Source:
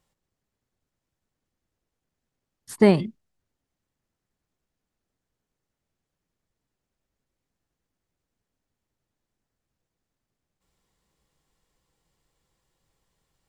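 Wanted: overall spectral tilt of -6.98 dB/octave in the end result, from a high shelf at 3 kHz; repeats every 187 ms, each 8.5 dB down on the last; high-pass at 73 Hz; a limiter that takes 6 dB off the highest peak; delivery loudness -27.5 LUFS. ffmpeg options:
-af "highpass=73,highshelf=f=3000:g=-8,alimiter=limit=0.237:level=0:latency=1,aecho=1:1:187|374|561|748:0.376|0.143|0.0543|0.0206,volume=0.794"

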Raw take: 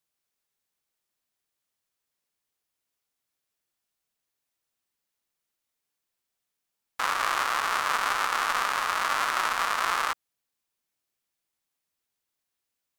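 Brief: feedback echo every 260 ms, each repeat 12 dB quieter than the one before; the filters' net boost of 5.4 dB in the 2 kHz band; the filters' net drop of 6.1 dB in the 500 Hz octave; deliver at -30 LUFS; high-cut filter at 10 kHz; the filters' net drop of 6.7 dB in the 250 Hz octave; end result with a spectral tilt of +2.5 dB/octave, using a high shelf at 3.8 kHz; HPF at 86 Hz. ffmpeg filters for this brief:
-af "highpass=86,lowpass=10000,equalizer=f=250:t=o:g=-6,equalizer=f=500:t=o:g=-8,equalizer=f=2000:t=o:g=6,highshelf=f=3800:g=7,aecho=1:1:260|520|780:0.251|0.0628|0.0157,volume=0.422"

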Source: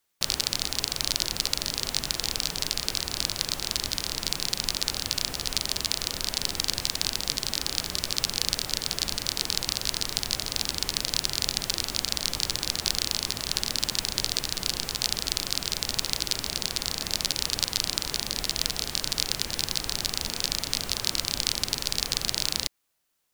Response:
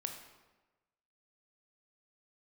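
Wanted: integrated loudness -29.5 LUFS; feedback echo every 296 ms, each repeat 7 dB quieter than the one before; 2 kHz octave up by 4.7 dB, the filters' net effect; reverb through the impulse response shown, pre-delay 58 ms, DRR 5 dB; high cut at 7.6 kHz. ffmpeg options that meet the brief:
-filter_complex "[0:a]lowpass=7600,equalizer=f=2000:t=o:g=6,aecho=1:1:296|592|888|1184|1480:0.447|0.201|0.0905|0.0407|0.0183,asplit=2[s0][s1];[1:a]atrim=start_sample=2205,adelay=58[s2];[s1][s2]afir=irnorm=-1:irlink=0,volume=0.631[s3];[s0][s3]amix=inputs=2:normalize=0,volume=0.562"

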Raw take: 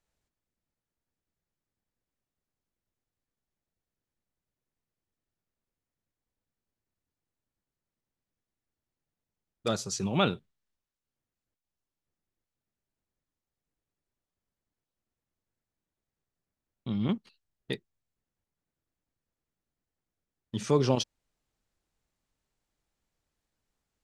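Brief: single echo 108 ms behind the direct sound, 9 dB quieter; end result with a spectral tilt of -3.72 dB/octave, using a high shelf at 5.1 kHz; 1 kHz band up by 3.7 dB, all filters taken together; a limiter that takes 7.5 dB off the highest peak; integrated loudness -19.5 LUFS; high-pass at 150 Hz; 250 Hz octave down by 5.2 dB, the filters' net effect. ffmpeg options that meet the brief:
-af "highpass=150,equalizer=f=250:t=o:g=-6,equalizer=f=1000:t=o:g=5,highshelf=f=5100:g=3.5,alimiter=limit=0.141:level=0:latency=1,aecho=1:1:108:0.355,volume=5.01"

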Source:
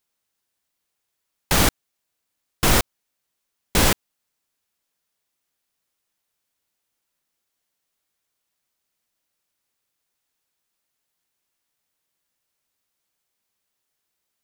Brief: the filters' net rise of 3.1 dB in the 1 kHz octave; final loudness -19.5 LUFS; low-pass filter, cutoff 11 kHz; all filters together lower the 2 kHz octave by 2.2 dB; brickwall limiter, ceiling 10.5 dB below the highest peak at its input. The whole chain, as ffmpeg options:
-af "lowpass=11000,equalizer=f=1000:t=o:g=5,equalizer=f=2000:t=o:g=-4.5,volume=2.99,alimiter=limit=0.531:level=0:latency=1"

